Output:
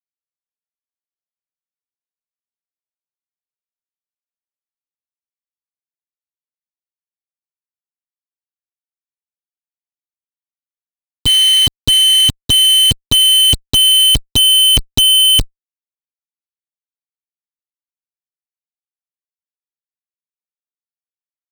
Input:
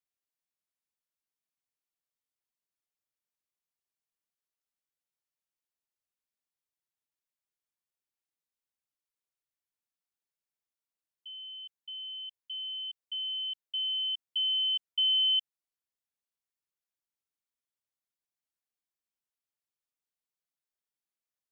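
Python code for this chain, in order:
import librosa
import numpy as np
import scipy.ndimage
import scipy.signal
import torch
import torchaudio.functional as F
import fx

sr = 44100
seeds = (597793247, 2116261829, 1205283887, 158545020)

y = fx.lower_of_two(x, sr, delay_ms=2.3)
y = fx.formant_shift(y, sr, semitones=5)
y = fx.fuzz(y, sr, gain_db=56.0, gate_db=-54.0)
y = F.gain(torch.from_numpy(y), 4.5).numpy()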